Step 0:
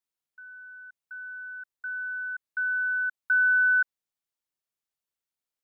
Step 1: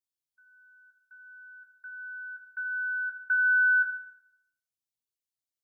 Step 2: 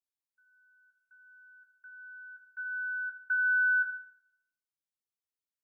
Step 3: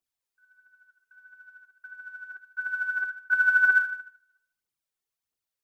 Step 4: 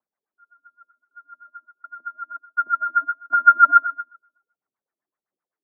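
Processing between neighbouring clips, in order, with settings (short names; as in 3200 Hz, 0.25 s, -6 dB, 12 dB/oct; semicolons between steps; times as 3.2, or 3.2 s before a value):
per-bin expansion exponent 1.5; reverb RT60 0.75 s, pre-delay 4 ms, DRR 1.5 dB; gain -2 dB
dynamic EQ 1400 Hz, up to +4 dB, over -36 dBFS, Q 1.5; gain -7.5 dB
phaser 1.5 Hz, delay 2.9 ms, feedback 53%; gain +4 dB
mistuned SSB -94 Hz 250–2300 Hz; LFO low-pass sine 7.8 Hz 360–1700 Hz; gain +4.5 dB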